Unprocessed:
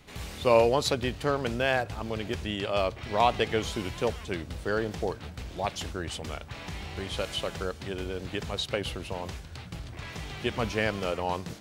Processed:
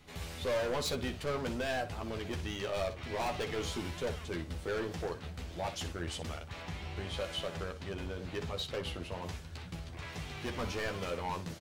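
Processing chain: 6.62–9.22 high shelf 5200 Hz -6 dB; hard clip -27 dBFS, distortion -5 dB; early reflections 12 ms -5 dB, 62 ms -12.5 dB; gain -5 dB

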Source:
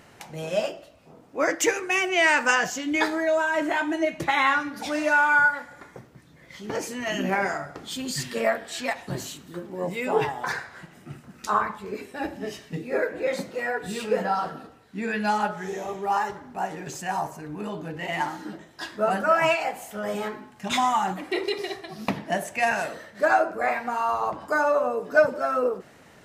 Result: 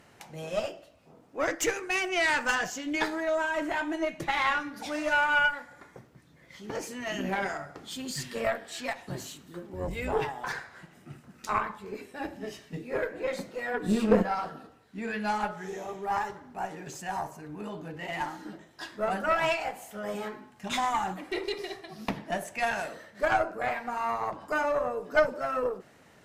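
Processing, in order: 9.73–10.14 octaver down 2 oct, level +2 dB; 13.7–14.21 small resonant body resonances 220/310/1100 Hz, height 14 dB -> 18 dB, ringing for 55 ms; added harmonics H 4 -15 dB, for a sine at -4.5 dBFS; gain -5.5 dB

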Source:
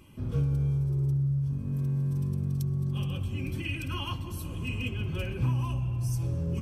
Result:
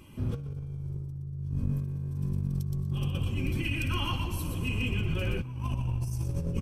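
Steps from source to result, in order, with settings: on a send: frequency-shifting echo 0.12 s, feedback 37%, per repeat -51 Hz, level -6 dB; on the sum: negative-ratio compressor -30 dBFS, ratio -0.5

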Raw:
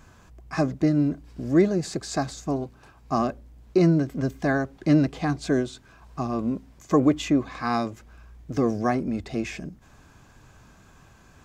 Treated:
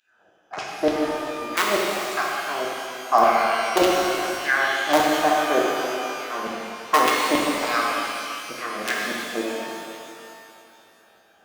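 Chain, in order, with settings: Wiener smoothing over 41 samples; in parallel at -4.5 dB: wrapped overs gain 11.5 dB; on the sum: LFO high-pass saw down 3.4 Hz 480–3200 Hz; shimmer reverb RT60 2.6 s, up +12 st, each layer -8 dB, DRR -3.5 dB

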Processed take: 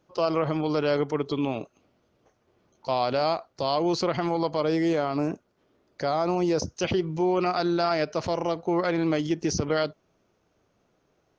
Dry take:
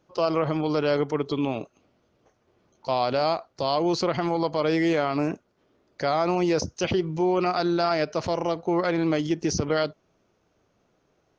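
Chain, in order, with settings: 4.61–6.62 dynamic EQ 2200 Hz, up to -6 dB, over -43 dBFS, Q 1; gain -1 dB

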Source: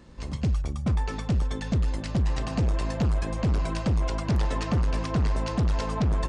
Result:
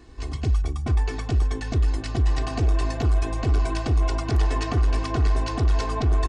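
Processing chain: comb 2.7 ms, depth 93%

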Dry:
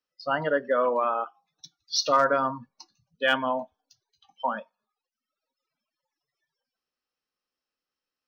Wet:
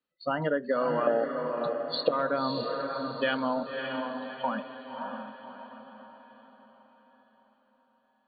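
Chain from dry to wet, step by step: 1.07–2.09 resonant low shelf 780 Hz +12.5 dB, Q 3; compressor 3:1, threshold -28 dBFS, peak gain reduction 13 dB; brick-wall FIR low-pass 4600 Hz; bell 220 Hz +8 dB 1.6 oct; diffused feedback echo 0.589 s, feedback 45%, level -4.5 dB

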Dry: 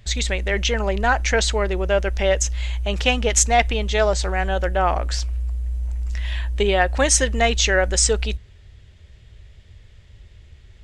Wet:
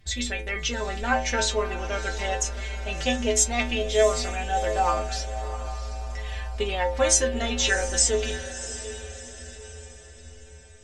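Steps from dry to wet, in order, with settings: metallic resonator 78 Hz, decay 0.56 s, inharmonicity 0.008; diffused feedback echo 0.689 s, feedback 46%, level -12 dB; gain +7.5 dB

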